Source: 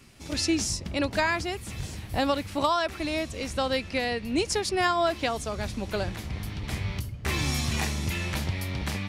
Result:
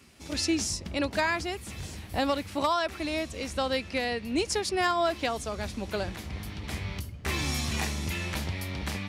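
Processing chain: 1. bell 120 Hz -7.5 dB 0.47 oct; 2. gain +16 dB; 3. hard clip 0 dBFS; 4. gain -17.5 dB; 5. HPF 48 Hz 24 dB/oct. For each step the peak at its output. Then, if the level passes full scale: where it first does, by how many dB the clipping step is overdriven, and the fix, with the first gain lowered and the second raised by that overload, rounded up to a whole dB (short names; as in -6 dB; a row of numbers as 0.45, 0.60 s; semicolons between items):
-11.5, +4.5, 0.0, -17.5, -15.5 dBFS; step 2, 4.5 dB; step 2 +11 dB, step 4 -12.5 dB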